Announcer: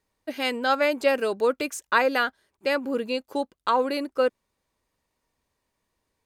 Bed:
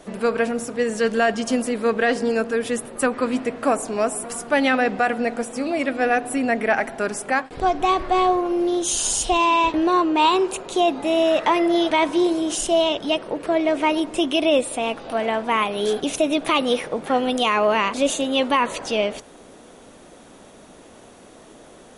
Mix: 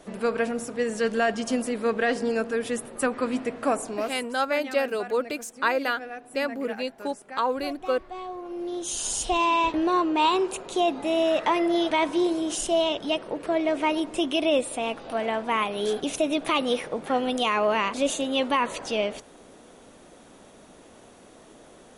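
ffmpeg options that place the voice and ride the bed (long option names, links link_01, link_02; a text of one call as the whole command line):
ffmpeg -i stem1.wav -i stem2.wav -filter_complex "[0:a]adelay=3700,volume=-3dB[link_01];[1:a]volume=9.5dB,afade=type=out:start_time=3.8:duration=0.52:silence=0.199526,afade=type=in:start_time=8.28:duration=1.13:silence=0.199526[link_02];[link_01][link_02]amix=inputs=2:normalize=0" out.wav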